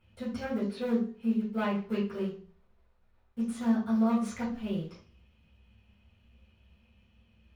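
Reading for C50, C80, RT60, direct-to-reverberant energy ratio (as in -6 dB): 5.5 dB, 10.5 dB, 0.45 s, -9.0 dB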